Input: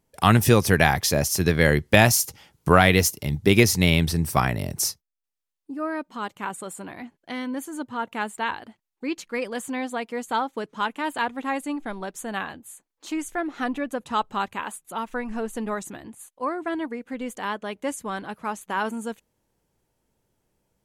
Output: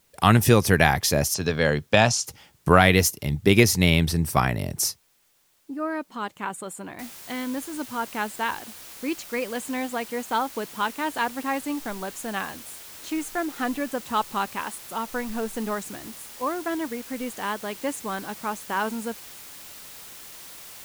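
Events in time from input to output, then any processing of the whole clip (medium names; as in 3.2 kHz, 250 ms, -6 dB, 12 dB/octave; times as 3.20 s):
1.34–2.27 s: cabinet simulation 120–7200 Hz, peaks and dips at 180 Hz -7 dB, 340 Hz -9 dB, 2 kHz -8 dB
6.99 s: noise floor step -65 dB -43 dB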